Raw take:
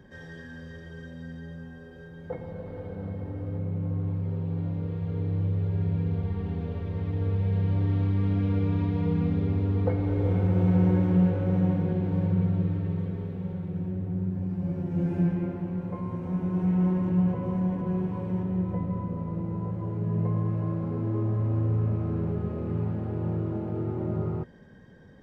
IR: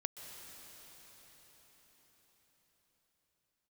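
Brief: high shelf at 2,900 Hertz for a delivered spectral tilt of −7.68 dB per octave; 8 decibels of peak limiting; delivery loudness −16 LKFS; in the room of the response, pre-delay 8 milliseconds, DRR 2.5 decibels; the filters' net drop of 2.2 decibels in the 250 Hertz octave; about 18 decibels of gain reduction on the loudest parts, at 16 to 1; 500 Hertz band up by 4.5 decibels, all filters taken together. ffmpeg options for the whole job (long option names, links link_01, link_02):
-filter_complex "[0:a]equalizer=frequency=250:width_type=o:gain=-5.5,equalizer=frequency=500:width_type=o:gain=7,highshelf=frequency=2900:gain=5,acompressor=threshold=-35dB:ratio=16,alimiter=level_in=9dB:limit=-24dB:level=0:latency=1,volume=-9dB,asplit=2[link_01][link_02];[1:a]atrim=start_sample=2205,adelay=8[link_03];[link_02][link_03]afir=irnorm=-1:irlink=0,volume=-1.5dB[link_04];[link_01][link_04]amix=inputs=2:normalize=0,volume=23.5dB"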